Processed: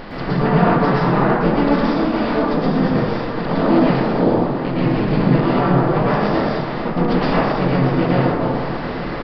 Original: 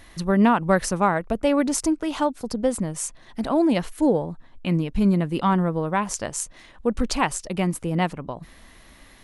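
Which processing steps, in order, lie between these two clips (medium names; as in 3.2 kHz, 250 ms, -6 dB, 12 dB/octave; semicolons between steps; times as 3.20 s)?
spectral levelling over time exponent 0.4; resampled via 11.025 kHz; harmony voices -5 st -1 dB; on a send: delay 861 ms -16.5 dB; on the sum: plate-style reverb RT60 1.5 s, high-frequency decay 0.45×, pre-delay 100 ms, DRR -8 dB; trim -11 dB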